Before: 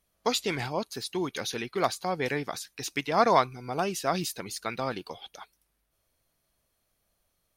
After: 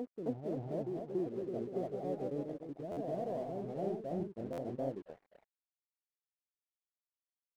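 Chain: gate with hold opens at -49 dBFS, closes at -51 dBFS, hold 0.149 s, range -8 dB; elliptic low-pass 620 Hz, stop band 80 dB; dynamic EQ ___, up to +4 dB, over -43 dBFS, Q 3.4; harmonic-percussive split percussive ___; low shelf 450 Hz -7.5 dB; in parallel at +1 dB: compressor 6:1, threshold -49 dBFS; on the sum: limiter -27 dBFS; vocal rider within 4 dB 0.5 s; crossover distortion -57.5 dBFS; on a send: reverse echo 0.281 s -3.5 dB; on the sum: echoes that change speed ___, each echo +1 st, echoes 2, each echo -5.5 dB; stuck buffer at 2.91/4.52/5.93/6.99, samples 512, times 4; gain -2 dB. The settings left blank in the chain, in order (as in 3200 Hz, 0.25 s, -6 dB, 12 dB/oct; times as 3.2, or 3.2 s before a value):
310 Hz, -8 dB, 0.274 s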